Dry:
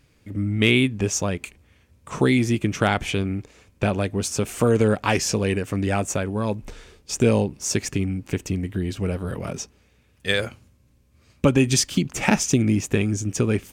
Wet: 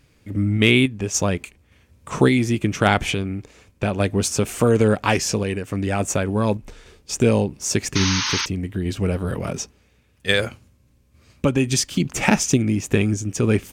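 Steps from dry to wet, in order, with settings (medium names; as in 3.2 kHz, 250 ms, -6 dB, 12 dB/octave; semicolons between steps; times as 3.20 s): random-step tremolo; painted sound noise, 7.95–8.46 s, 830–6600 Hz -28 dBFS; trim +4.5 dB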